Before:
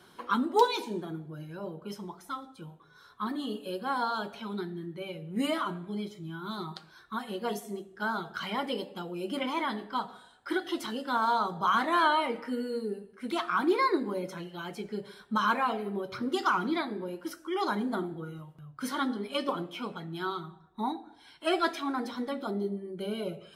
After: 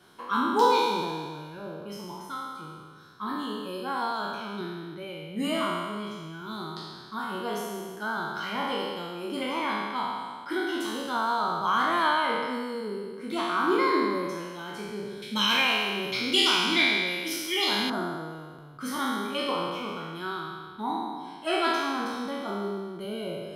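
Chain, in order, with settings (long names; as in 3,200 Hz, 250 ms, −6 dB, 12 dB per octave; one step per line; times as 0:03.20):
peak hold with a decay on every bin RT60 1.78 s
0:15.22–0:17.90: high shelf with overshoot 1,800 Hz +10.5 dB, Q 3
level −2.5 dB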